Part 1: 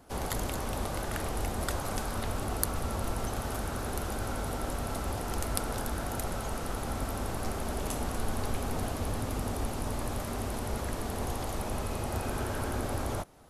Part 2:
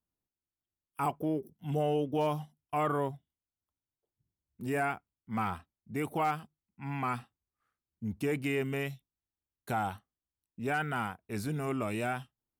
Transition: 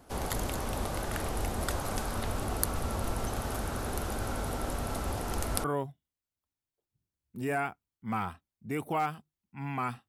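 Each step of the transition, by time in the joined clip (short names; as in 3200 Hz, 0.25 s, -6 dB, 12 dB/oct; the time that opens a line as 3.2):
part 1
5.64 switch to part 2 from 2.89 s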